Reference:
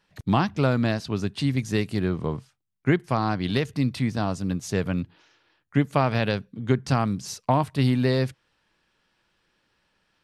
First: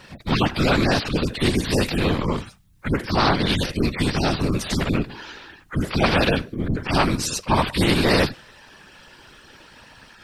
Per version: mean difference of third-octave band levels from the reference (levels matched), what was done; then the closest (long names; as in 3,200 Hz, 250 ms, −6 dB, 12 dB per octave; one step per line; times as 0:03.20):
10.5 dB: harmonic-percussive split with one part muted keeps harmonic
dynamic equaliser 130 Hz, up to −3 dB, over −32 dBFS, Q 2.4
random phases in short frames
every bin compressed towards the loudest bin 2 to 1
level +8 dB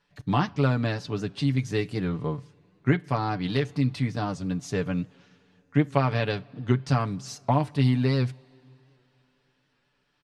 2.5 dB: Bessel low-pass filter 7,400 Hz, order 2
comb filter 6.9 ms, depth 60%
coupled-rooms reverb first 0.29 s, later 3.3 s, from −17 dB, DRR 18.5 dB
wow of a warped record 78 rpm, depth 100 cents
level −3.5 dB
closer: second